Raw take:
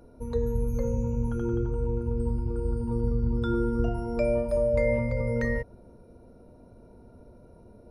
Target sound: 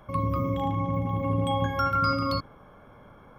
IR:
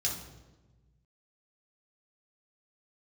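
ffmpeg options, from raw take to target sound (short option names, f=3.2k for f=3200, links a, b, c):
-af "asetrate=103194,aresample=44100"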